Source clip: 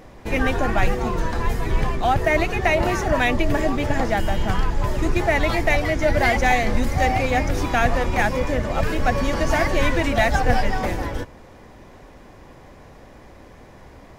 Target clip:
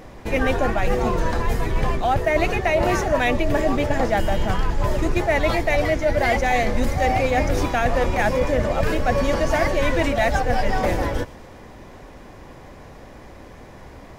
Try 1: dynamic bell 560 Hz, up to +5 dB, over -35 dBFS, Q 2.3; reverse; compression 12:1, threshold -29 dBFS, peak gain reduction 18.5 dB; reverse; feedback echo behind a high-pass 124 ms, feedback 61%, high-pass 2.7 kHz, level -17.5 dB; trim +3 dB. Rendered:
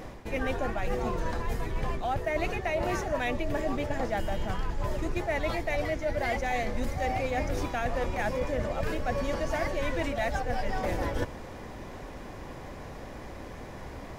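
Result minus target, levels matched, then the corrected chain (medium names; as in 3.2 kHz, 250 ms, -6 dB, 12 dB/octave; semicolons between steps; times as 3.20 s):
compression: peak gain reduction +10 dB
dynamic bell 560 Hz, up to +5 dB, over -35 dBFS, Q 2.3; reverse; compression 12:1, threshold -18 dBFS, peak gain reduction 8.5 dB; reverse; feedback echo behind a high-pass 124 ms, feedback 61%, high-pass 2.7 kHz, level -17.5 dB; trim +3 dB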